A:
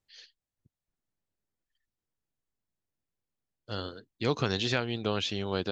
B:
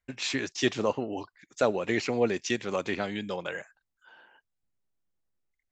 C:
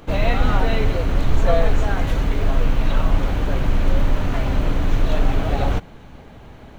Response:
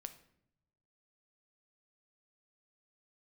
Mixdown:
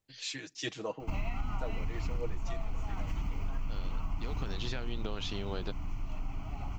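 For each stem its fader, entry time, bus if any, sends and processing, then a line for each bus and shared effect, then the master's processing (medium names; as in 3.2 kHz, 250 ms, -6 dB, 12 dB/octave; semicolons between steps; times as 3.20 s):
-2.0 dB, 0.00 s, send -6 dB, compression, threshold -33 dBFS, peak gain reduction 11 dB
-13.5 dB, 0.00 s, send -15.5 dB, comb 6.3 ms, depth 81%; three bands expanded up and down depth 70%
4.34 s -6.5 dB -> 4.75 s -17.5 dB, 1.00 s, no send, static phaser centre 2.5 kHz, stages 8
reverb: on, RT60 0.75 s, pre-delay 7 ms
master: compression 10:1, threshold -29 dBFS, peak gain reduction 14.5 dB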